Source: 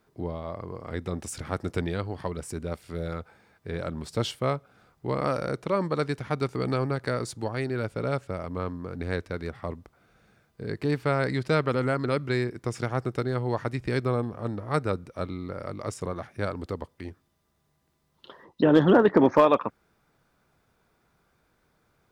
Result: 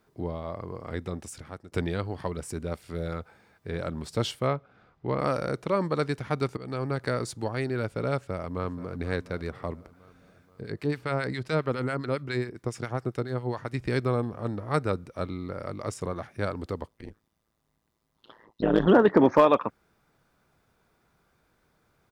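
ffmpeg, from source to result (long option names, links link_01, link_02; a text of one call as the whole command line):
ffmpeg -i in.wav -filter_complex "[0:a]asettb=1/sr,asplit=3[link_01][link_02][link_03];[link_01]atrim=end=4.474[link_04];[link_02]atrim=start=4.47:end=5.19,asetpts=PTS-STARTPTS,afade=type=in:duration=0.004:curve=qsin,afade=type=out:start_time=0.716:duration=0.004:curve=qsin,lowpass=3500[link_05];[link_03]atrim=start=5.186[link_06];[link_04][link_05]acrossfade=duration=0.004:curve1=hsin:curve2=qsin[link_07];[link_07][link_06]acrossfade=duration=0.004:curve1=qsin:curve2=hsin,asplit=2[link_08][link_09];[link_09]afade=type=in:start_time=8.15:duration=0.01,afade=type=out:start_time=8.97:duration=0.01,aecho=0:1:480|960|1440|1920|2400:0.177828|0.0978054|0.053793|0.0295861|0.0162724[link_10];[link_08][link_10]amix=inputs=2:normalize=0,asettb=1/sr,asplit=3[link_11][link_12][link_13];[link_11]atrim=end=10.614[link_14];[link_12]atrim=start=10.61:end=13.74,asetpts=PTS-STARTPTS,afade=type=in:duration=0.004:curve=qsin,afade=type=out:start_time=3.126:duration=0.004:curve=qsin,acrossover=split=1100[link_15][link_16];[link_15]aeval=exprs='val(0)*(1-0.7/2+0.7/2*cos(2*PI*7.3*n/s))':channel_layout=same[link_17];[link_16]aeval=exprs='val(0)*(1-0.7/2-0.7/2*cos(2*PI*7.3*n/s))':channel_layout=same[link_18];[link_17][link_18]amix=inputs=2:normalize=0[link_19];[link_13]atrim=start=13.736[link_20];[link_14][link_19]acrossfade=duration=0.004:curve1=hsin:curve2=qsin[link_21];[link_21][link_20]acrossfade=duration=0.004:curve1=qsin:curve2=hsin,asplit=3[link_22][link_23][link_24];[link_22]afade=type=out:start_time=16.87:duration=0.02[link_25];[link_23]tremolo=f=110:d=1,afade=type=in:start_time=16.87:duration=0.02,afade=type=out:start_time=18.86:duration=0.02[link_26];[link_24]afade=type=in:start_time=18.86:duration=0.02[link_27];[link_25][link_26][link_27]amix=inputs=3:normalize=0,asplit=3[link_28][link_29][link_30];[link_28]atrim=end=1.72,asetpts=PTS-STARTPTS,afade=type=out:start_time=0.9:duration=0.82:silence=0.0891251[link_31];[link_29]atrim=start=1.72:end=6.57,asetpts=PTS-STARTPTS,afade=type=in:duration=0.004:curve=hsin:silence=0.0891251,afade=type=out:start_time=4.846:duration=0.004:curve=hsin:silence=0.125893[link_32];[link_30]atrim=start=6.57,asetpts=PTS-STARTPTS,afade=type=in:duration=0.41:silence=0.125893[link_33];[link_31][link_32][link_33]concat=n=3:v=0:a=1" out.wav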